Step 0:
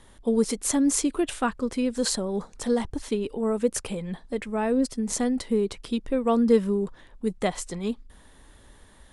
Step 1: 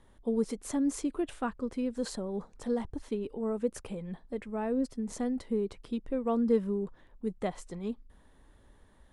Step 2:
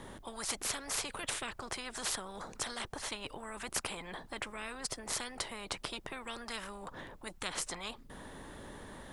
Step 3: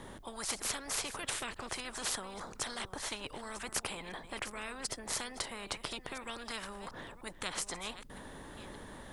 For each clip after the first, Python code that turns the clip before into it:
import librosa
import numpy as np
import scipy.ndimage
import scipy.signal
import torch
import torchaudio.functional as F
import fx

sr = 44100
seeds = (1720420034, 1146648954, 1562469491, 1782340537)

y1 = fx.high_shelf(x, sr, hz=2100.0, db=-10.0)
y1 = y1 * 10.0 ** (-6.5 / 20.0)
y2 = fx.spectral_comp(y1, sr, ratio=10.0)
y2 = y2 * 10.0 ** (-2.5 / 20.0)
y3 = fx.reverse_delay(y2, sr, ms=515, wet_db=-12.5)